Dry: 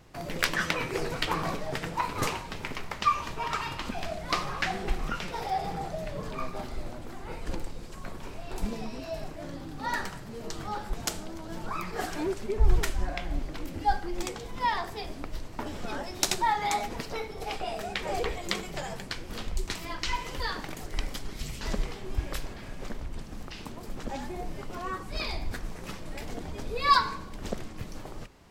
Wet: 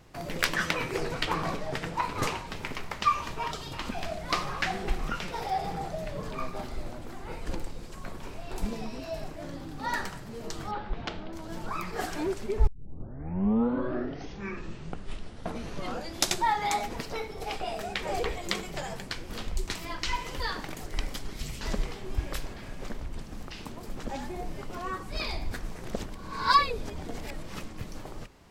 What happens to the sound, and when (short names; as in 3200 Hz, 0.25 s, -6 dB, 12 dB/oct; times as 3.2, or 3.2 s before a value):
0.97–2.47 high shelf 11000 Hz -8 dB
3.51–3.73 spectral gain 790–2900 Hz -13 dB
10.71–11.33 LPF 3700 Hz 24 dB/oct
12.67 tape start 3.79 s
25.85–27.63 reverse